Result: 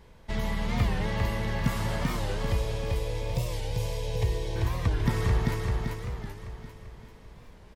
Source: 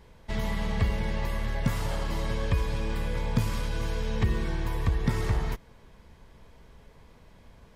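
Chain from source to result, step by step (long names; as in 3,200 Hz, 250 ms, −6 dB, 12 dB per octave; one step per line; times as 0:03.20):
0:02.18–0:04.56: phaser with its sweep stopped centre 560 Hz, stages 4
repeating echo 391 ms, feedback 49%, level −3 dB
wow of a warped record 45 rpm, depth 160 cents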